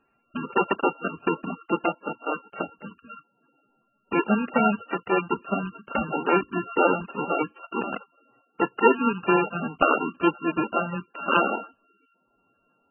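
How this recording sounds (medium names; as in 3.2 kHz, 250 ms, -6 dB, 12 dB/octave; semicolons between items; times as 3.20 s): a buzz of ramps at a fixed pitch in blocks of 32 samples; MP3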